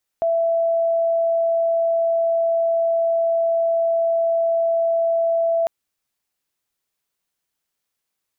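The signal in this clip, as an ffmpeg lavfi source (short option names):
-f lavfi -i "aevalsrc='0.158*sin(2*PI*666*t)':d=5.45:s=44100"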